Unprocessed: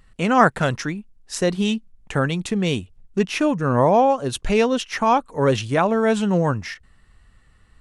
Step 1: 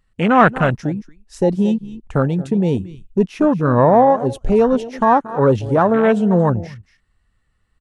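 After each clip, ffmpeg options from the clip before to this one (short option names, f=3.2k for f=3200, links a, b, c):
-af "acontrast=67,aecho=1:1:227:0.178,afwtdn=0.126,volume=-1dB"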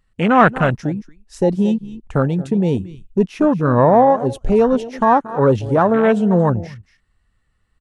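-af anull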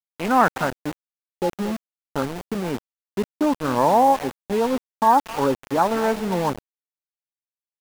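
-af "highpass=180,equalizer=f=280:t=q:w=4:g=5,equalizer=f=870:t=q:w=4:g=10,equalizer=f=1.4k:t=q:w=4:g=3,lowpass=f=4.3k:w=0.5412,lowpass=f=4.3k:w=1.3066,aeval=exprs='val(0)*gte(abs(val(0)),0.126)':c=same,volume=-8.5dB"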